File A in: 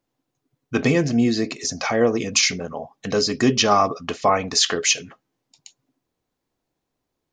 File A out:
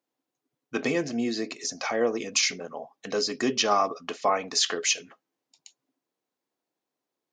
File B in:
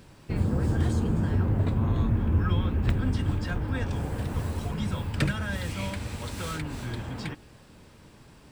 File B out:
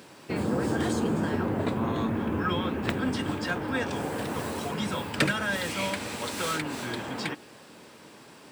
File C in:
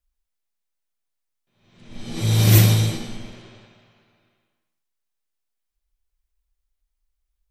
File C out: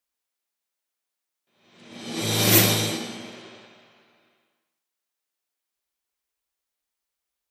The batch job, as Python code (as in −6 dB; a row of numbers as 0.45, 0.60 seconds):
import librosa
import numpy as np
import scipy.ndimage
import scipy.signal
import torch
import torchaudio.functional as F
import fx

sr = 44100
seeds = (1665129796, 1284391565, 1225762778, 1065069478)

y = scipy.signal.sosfilt(scipy.signal.butter(2, 270.0, 'highpass', fs=sr, output='sos'), x)
y = y * 10.0 ** (-30 / 20.0) / np.sqrt(np.mean(np.square(y)))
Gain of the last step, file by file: −6.0, +6.5, +3.5 decibels